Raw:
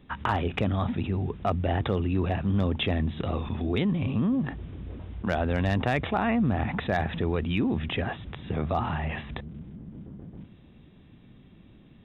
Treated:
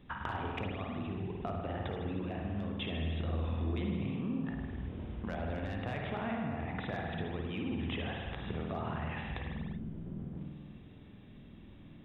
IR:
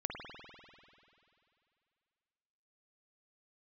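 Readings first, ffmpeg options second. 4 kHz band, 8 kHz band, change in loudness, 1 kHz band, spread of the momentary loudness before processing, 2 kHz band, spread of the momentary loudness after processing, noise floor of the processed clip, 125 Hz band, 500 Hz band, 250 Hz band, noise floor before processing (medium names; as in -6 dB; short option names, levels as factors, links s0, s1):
-8.5 dB, no reading, -10.0 dB, -10.0 dB, 14 LU, -9.0 dB, 13 LU, -53 dBFS, -9.0 dB, -9.5 dB, -9.5 dB, -53 dBFS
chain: -filter_complex "[0:a]acompressor=threshold=0.02:ratio=6[s0];[1:a]atrim=start_sample=2205,afade=t=out:st=0.44:d=0.01,atrim=end_sample=19845[s1];[s0][s1]afir=irnorm=-1:irlink=0,volume=0.841"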